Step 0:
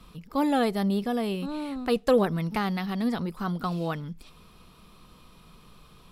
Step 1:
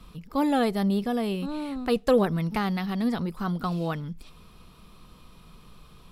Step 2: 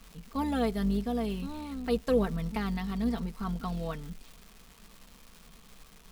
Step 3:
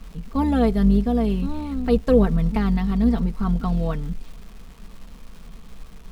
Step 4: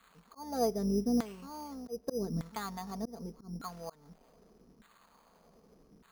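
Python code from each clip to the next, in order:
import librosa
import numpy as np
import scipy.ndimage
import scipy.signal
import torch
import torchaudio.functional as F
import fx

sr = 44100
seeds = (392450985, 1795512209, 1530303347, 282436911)

y1 = fx.low_shelf(x, sr, hz=130.0, db=4.5)
y2 = fx.octave_divider(y1, sr, octaves=2, level_db=-5.0)
y2 = y2 + 0.64 * np.pad(y2, (int(4.4 * sr / 1000.0), 0))[:len(y2)]
y2 = fx.dmg_crackle(y2, sr, seeds[0], per_s=570.0, level_db=-35.0)
y2 = y2 * librosa.db_to_amplitude(-8.0)
y3 = fx.tilt_eq(y2, sr, slope=-2.0)
y3 = y3 * librosa.db_to_amplitude(6.5)
y4 = fx.filter_lfo_bandpass(y3, sr, shape='saw_down', hz=0.83, low_hz=270.0, high_hz=1600.0, q=1.7)
y4 = np.repeat(y4[::8], 8)[:len(y4)]
y4 = fx.auto_swell(y4, sr, attack_ms=281.0)
y4 = y4 * librosa.db_to_amplitude(-4.5)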